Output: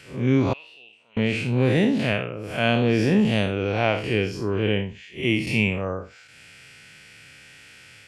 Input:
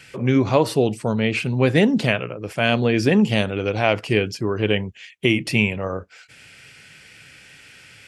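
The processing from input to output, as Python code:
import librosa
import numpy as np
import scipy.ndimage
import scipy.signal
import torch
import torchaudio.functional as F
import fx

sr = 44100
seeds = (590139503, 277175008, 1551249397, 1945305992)

y = fx.spec_blur(x, sr, span_ms=131.0)
y = fx.bandpass_q(y, sr, hz=2700.0, q=11.0, at=(0.53, 1.17))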